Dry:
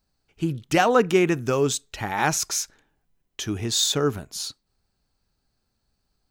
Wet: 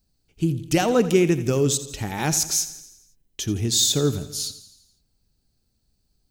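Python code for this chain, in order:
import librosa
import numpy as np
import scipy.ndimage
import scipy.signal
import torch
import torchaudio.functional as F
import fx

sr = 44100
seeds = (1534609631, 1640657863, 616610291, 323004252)

p1 = fx.peak_eq(x, sr, hz=1200.0, db=-13.5, octaves=2.5)
p2 = p1 + fx.echo_feedback(p1, sr, ms=84, feedback_pct=57, wet_db=-14.5, dry=0)
y = F.gain(torch.from_numpy(p2), 5.5).numpy()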